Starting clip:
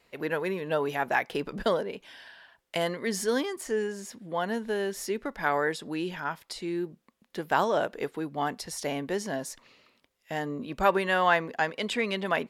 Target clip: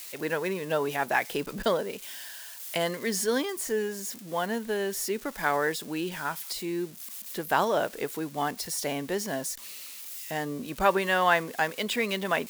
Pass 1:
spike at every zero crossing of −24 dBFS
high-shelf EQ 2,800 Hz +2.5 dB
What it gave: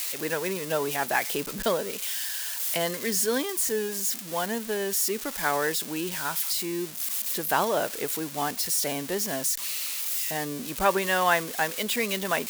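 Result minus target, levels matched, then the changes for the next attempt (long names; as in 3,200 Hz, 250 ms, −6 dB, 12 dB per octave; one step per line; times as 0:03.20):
spike at every zero crossing: distortion +11 dB
change: spike at every zero crossing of −35 dBFS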